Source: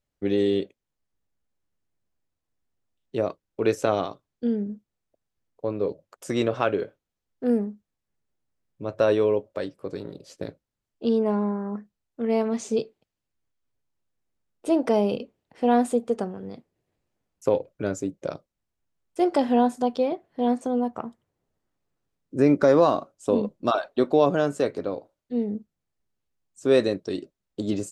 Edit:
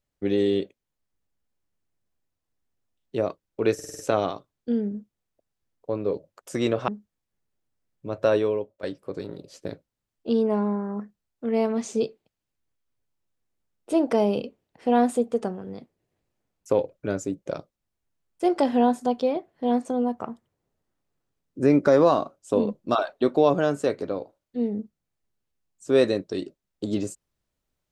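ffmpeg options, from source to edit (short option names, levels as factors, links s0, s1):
-filter_complex "[0:a]asplit=8[s0][s1][s2][s3][s4][s5][s6][s7];[s0]atrim=end=3.792[s8];[s1]atrim=start=3.738:end=3.792[s9];[s2]atrim=start=3.738:end=3.792[s10];[s3]atrim=start=3.738:end=3.792[s11];[s4]atrim=start=3.738:end=3.792[s12];[s5]atrim=start=3.738:end=6.632[s13];[s6]atrim=start=7.638:end=9.59,asetpts=PTS-STARTPTS,afade=t=out:st=1.422:d=0.53:silence=0.188365[s14];[s7]atrim=start=9.59,asetpts=PTS-STARTPTS,afade=t=in:d=0.004:c=hsin:silence=0.188365[s15];[s8][s9]acrossfade=d=0.004:c1=hsin:c2=hsin[s16];[s16][s10]acrossfade=d=0.004:c1=hsin:c2=hsin[s17];[s17][s11]acrossfade=d=0.004:c1=hsin:c2=hsin[s18];[s18][s12]acrossfade=d=0.004:c1=hsin:c2=hsin[s19];[s19][s13]acrossfade=d=0.004:c1=hsin:c2=hsin[s20];[s14][s15]concat=n=2:v=0:a=1[s21];[s20][s21]acrossfade=d=0.004:c1=hsin:c2=hsin"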